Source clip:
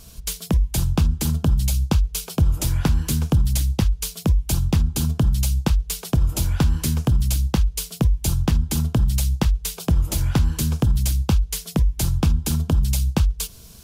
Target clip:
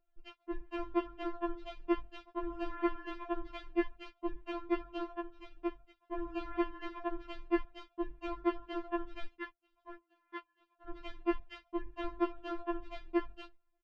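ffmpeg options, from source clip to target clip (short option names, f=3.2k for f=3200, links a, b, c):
-filter_complex "[0:a]asplit=3[a][b][c];[a]afade=t=out:st=5.12:d=0.02[d];[b]acompressor=threshold=-23dB:ratio=12,afade=t=in:st=5.12:d=0.02,afade=t=out:st=5.95:d=0.02[e];[c]afade=t=in:st=5.95:d=0.02[f];[d][e][f]amix=inputs=3:normalize=0,asettb=1/sr,asplit=3[g][h][i];[g]atrim=end=9.254[j];[h]atrim=start=9.25:end=10.88,asetpts=PTS-STARTPTS,afade=t=in:d=0.004:c=qsin,afade=t=out:st=1.626:d=0.004:c=qsin,highpass=f=960:p=1[k];[i]atrim=start=10.876[l];[j][k]acrossfade=d=0.004:c1=hsin:c2=qsin[m];[m][l]acrossfade=d=0.004:c1=qsin:c2=hsin,asplit=2[n][o];[o]adelay=699.7,volume=-20dB,highshelf=f=4k:g=-15.7[p];[n][p]amix=inputs=2:normalize=0,aphaser=in_gain=1:out_gain=1:delay=2.8:decay=0.44:speed=1.6:type=triangular,lowpass=f=2.1k:w=0.5412,lowpass=f=2.1k:w=1.3066,agate=range=-27dB:threshold=-29dB:ratio=16:detection=peak,afftfilt=real='re*4*eq(mod(b,16),0)':imag='im*4*eq(mod(b,16),0)':win_size=2048:overlap=0.75,volume=-2dB"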